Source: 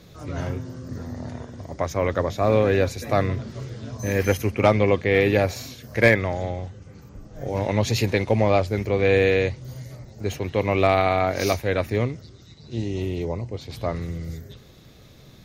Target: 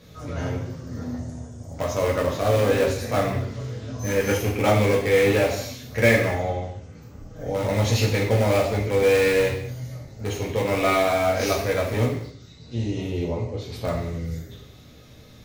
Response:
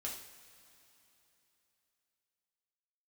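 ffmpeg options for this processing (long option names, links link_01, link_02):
-filter_complex "[0:a]asplit=2[link_01][link_02];[link_02]aeval=exprs='(mod(5.62*val(0)+1,2)-1)/5.62':channel_layout=same,volume=-10.5dB[link_03];[link_01][link_03]amix=inputs=2:normalize=0,asettb=1/sr,asplit=3[link_04][link_05][link_06];[link_04]atrim=end=1.184[link_07];[link_05]atrim=start=1.18:end=1.74,asetpts=PTS-STARTPTS,afade=type=in:duration=0.004:curve=qsin,afade=type=out:start_time=0.556:duration=0.004:curve=qsin,equalizer=frequency=250:width_type=o:width=1:gain=-6,equalizer=frequency=500:width_type=o:width=1:gain=-5,equalizer=frequency=1000:width_type=o:width=1:gain=-7,equalizer=frequency=2000:width_type=o:width=1:gain=-10,equalizer=frequency=4000:width_type=o:width=1:gain=-10,equalizer=frequency=8000:width_type=o:width=1:gain=10[link_08];[link_06]atrim=start=1.736[link_09];[link_07][link_08]acrossfade=duration=0.004:curve1=hsin:curve2=qsin[link_10];[link_10][link_09]acrossfade=duration=0.004:curve1=qsin:curve2=hsin[link_11];[1:a]atrim=start_sample=2205,afade=type=out:start_time=0.32:duration=0.01,atrim=end_sample=14553[link_12];[link_11][link_12]afir=irnorm=-1:irlink=0"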